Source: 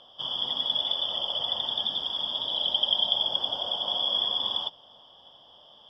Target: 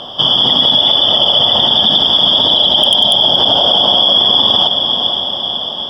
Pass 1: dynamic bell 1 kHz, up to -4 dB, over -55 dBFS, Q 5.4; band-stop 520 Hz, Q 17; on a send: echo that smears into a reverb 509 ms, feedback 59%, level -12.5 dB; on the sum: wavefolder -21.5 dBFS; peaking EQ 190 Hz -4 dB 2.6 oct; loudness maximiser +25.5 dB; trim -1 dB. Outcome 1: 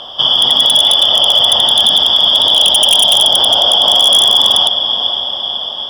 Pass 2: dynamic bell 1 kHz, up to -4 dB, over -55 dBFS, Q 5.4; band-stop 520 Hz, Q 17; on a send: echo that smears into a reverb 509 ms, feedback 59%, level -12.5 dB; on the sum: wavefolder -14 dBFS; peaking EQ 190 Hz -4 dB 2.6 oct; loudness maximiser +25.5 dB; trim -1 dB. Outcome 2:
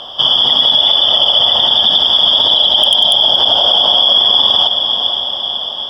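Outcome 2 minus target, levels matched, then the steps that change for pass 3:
250 Hz band -9.0 dB
change: peaking EQ 190 Hz +6.5 dB 2.6 oct

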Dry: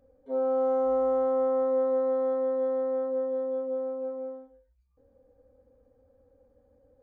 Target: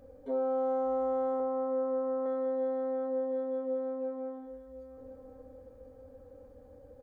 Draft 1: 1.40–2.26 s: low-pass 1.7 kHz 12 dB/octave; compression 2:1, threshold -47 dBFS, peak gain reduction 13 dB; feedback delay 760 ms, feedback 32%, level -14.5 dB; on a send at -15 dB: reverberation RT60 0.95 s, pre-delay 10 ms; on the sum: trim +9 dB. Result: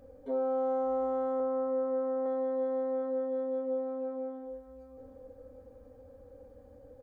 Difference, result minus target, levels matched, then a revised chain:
echo 298 ms early
1.40–2.26 s: low-pass 1.7 kHz 12 dB/octave; compression 2:1, threshold -47 dBFS, peak gain reduction 13 dB; feedback delay 1058 ms, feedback 32%, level -14.5 dB; on a send at -15 dB: reverberation RT60 0.95 s, pre-delay 10 ms; on the sum: trim +9 dB

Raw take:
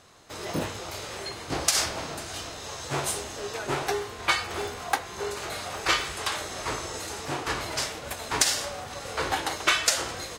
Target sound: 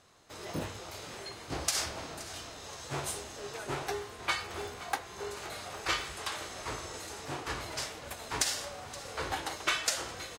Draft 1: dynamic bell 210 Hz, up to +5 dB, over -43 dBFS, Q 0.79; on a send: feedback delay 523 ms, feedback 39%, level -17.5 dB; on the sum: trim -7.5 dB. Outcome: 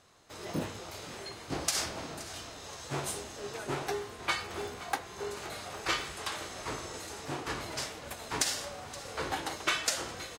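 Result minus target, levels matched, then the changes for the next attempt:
250 Hz band +3.0 dB
change: dynamic bell 68 Hz, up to +5 dB, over -43 dBFS, Q 0.79

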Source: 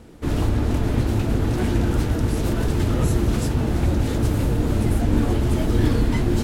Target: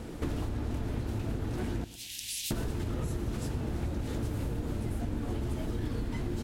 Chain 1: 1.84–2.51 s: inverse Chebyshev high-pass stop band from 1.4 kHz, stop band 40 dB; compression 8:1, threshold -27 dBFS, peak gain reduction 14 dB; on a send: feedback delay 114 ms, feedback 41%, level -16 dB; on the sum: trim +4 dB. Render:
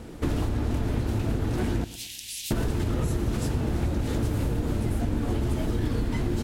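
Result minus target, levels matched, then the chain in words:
compression: peak gain reduction -7 dB
1.84–2.51 s: inverse Chebyshev high-pass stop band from 1.4 kHz, stop band 40 dB; compression 8:1, threshold -35 dBFS, peak gain reduction 21 dB; on a send: feedback delay 114 ms, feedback 41%, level -16 dB; on the sum: trim +4 dB

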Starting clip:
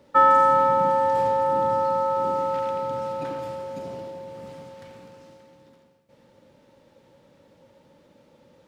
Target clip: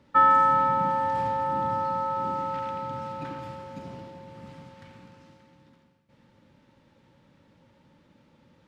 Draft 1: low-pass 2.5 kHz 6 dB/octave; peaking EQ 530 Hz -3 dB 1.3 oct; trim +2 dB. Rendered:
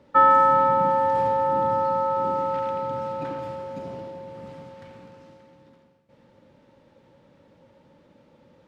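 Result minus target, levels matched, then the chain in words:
500 Hz band +6.0 dB
low-pass 2.5 kHz 6 dB/octave; peaking EQ 530 Hz -12 dB 1.3 oct; trim +2 dB

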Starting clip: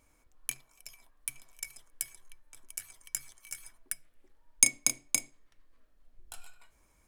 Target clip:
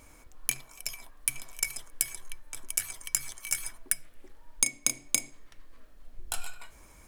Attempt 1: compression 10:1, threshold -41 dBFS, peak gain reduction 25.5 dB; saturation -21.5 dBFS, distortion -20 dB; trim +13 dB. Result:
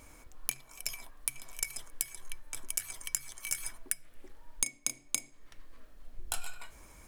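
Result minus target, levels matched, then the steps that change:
compression: peak gain reduction +8 dB
change: compression 10:1, threshold -32 dBFS, peak gain reduction 17.5 dB

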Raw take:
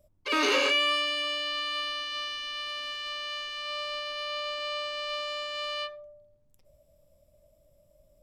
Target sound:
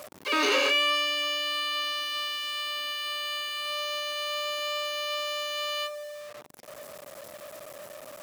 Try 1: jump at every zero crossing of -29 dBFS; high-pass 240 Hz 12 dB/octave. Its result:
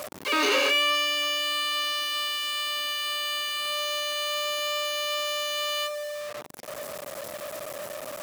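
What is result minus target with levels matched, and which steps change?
jump at every zero crossing: distortion +6 dB
change: jump at every zero crossing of -36.5 dBFS

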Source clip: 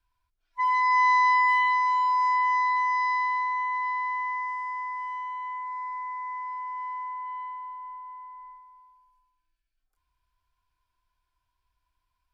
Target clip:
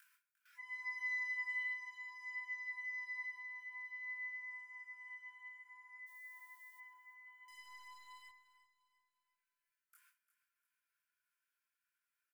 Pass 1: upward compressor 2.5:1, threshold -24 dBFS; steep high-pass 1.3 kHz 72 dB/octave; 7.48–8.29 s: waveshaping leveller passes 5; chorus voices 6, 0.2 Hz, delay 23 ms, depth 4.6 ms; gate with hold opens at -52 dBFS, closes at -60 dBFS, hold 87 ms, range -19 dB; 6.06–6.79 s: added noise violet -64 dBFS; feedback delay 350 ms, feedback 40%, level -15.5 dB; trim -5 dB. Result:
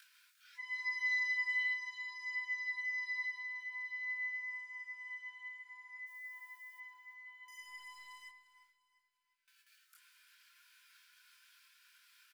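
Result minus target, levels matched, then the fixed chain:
4 kHz band +6.5 dB
upward compressor 2.5:1, threshold -24 dBFS; steep high-pass 1.3 kHz 72 dB/octave; peaking EQ 4 kHz -15 dB 1.4 oct; 7.48–8.29 s: waveshaping leveller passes 5; chorus voices 6, 0.2 Hz, delay 23 ms, depth 4.6 ms; gate with hold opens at -52 dBFS, closes at -60 dBFS, hold 87 ms, range -19 dB; 6.06–6.79 s: added noise violet -64 dBFS; feedback delay 350 ms, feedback 40%, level -15.5 dB; trim -5 dB

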